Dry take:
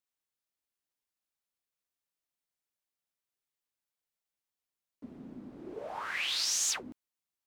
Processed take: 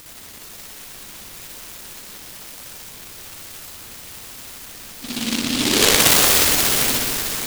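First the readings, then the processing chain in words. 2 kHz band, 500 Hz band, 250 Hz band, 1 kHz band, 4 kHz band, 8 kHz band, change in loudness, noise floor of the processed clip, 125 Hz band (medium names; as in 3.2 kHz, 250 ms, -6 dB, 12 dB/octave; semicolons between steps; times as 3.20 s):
+17.5 dB, +21.5 dB, +23.0 dB, +18.0 dB, +17.5 dB, +16.5 dB, +16.0 dB, -39 dBFS, +27.0 dB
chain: zero-crossing glitches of -36 dBFS; rippled EQ curve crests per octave 1, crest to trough 6 dB; in parallel at +1 dB: upward compressor, threshold -34 dBFS; on the sum: overdrive pedal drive 16 dB, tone 1.3 kHz, clips at -9 dBFS; phase shifter stages 12, 1.1 Hz, lowest notch 110–4000 Hz; distance through air 53 m; on a send: multi-head delay 178 ms, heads second and third, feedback 56%, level -8.5 dB; on the sum: spring tank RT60 1.5 s, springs 59 ms, chirp 25 ms, DRR -8 dB; delay time shaken by noise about 3.4 kHz, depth 0.46 ms; trim +6.5 dB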